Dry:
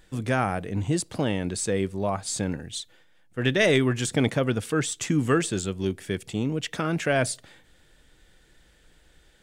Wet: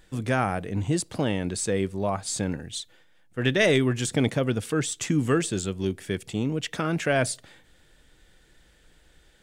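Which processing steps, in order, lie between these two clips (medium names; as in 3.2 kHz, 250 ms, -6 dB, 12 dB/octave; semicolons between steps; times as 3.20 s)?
3.72–5.98 s: dynamic bell 1.3 kHz, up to -3 dB, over -34 dBFS, Q 0.71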